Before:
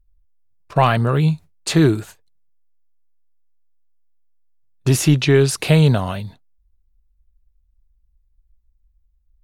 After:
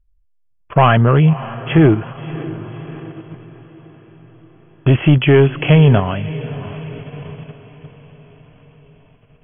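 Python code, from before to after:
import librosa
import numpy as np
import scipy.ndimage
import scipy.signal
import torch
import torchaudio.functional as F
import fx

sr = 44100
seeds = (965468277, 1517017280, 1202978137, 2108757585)

p1 = fx.leveller(x, sr, passes=1)
p2 = fx.brickwall_lowpass(p1, sr, high_hz=3400.0)
p3 = fx.echo_diffused(p2, sr, ms=600, feedback_pct=51, wet_db=-15.0)
p4 = fx.level_steps(p3, sr, step_db=18)
p5 = p3 + F.gain(torch.from_numpy(p4), -1.0).numpy()
y = F.gain(torch.from_numpy(p5), -1.0).numpy()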